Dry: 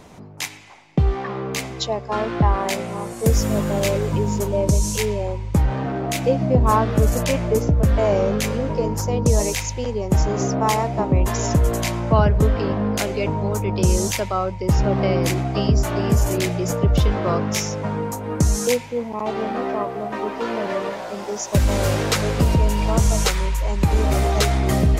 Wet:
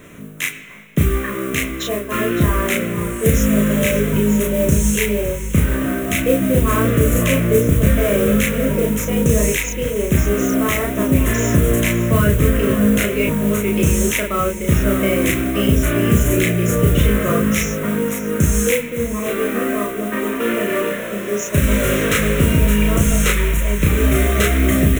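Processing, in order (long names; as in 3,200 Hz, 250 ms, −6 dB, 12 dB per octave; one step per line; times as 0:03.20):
low-shelf EQ 130 Hz −7 dB
mains-hum notches 60/120/180/240/300/360/420/480 Hz
in parallel at 0 dB: brickwall limiter −14.5 dBFS, peak gain reduction 9 dB
on the sum: tempo change 1×
noise that follows the level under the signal 16 dB
phaser with its sweep stopped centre 2,000 Hz, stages 4
double-tracking delay 34 ms −2 dB
single-tap delay 562 ms −13 dB
level +1.5 dB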